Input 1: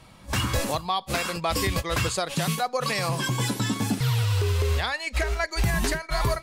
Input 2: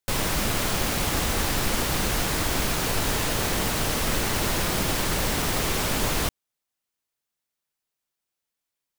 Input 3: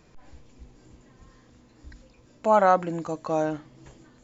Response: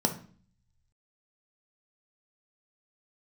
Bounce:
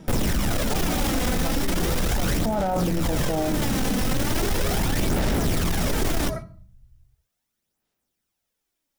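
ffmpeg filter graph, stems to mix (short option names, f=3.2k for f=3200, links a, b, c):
-filter_complex "[0:a]alimiter=limit=-23dB:level=0:latency=1:release=21,volume=-7dB,asplit=2[a][b];[b]volume=-8dB[c];[1:a]aphaser=in_gain=1:out_gain=1:delay=4:decay=0.46:speed=0.38:type=sinusoidal,asoftclip=type=tanh:threshold=-23.5dB,volume=2.5dB,asplit=2[d][e];[e]volume=-23dB[f];[2:a]volume=-4.5dB,asplit=2[g][h];[h]volume=-5dB[i];[3:a]atrim=start_sample=2205[j];[c][f][i]amix=inputs=3:normalize=0[k];[k][j]afir=irnorm=-1:irlink=0[l];[a][d][g][l]amix=inputs=4:normalize=0,lowshelf=f=340:g=8.5,alimiter=limit=-16.5dB:level=0:latency=1:release=14"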